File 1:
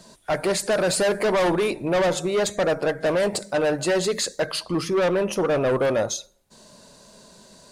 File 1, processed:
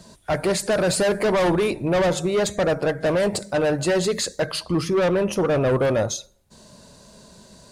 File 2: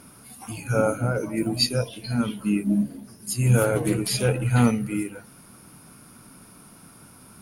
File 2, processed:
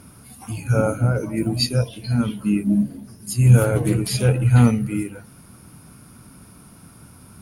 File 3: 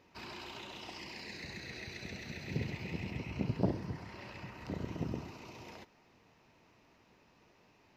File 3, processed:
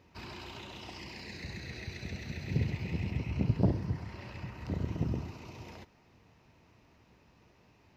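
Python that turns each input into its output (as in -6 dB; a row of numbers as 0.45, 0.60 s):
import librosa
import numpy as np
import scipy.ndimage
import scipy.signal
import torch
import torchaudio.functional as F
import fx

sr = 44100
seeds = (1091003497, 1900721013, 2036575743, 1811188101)

y = fx.peak_eq(x, sr, hz=72.0, db=10.5, octaves=2.3)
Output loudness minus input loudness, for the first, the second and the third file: +1.0, +4.5, +5.0 LU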